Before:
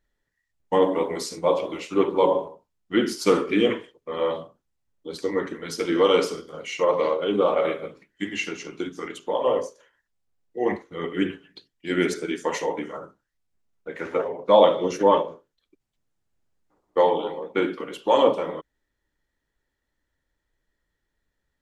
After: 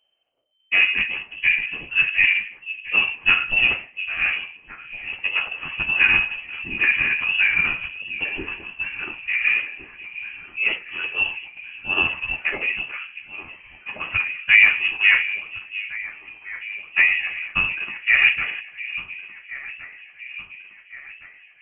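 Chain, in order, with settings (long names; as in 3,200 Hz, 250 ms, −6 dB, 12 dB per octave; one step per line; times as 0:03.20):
formants moved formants +5 semitones
delay that swaps between a low-pass and a high-pass 707 ms, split 810 Hz, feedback 72%, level −12.5 dB
voice inversion scrambler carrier 3,100 Hz
level +2 dB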